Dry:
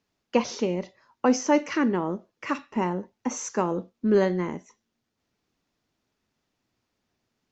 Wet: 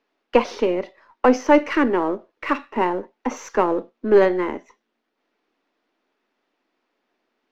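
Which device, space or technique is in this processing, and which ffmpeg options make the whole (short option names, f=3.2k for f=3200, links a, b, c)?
crystal radio: -af "highpass=200,lowpass=2.9k,highpass=f=260:w=0.5412,highpass=f=260:w=1.3066,aeval=exprs='if(lt(val(0),0),0.708*val(0),val(0))':c=same,volume=9dB"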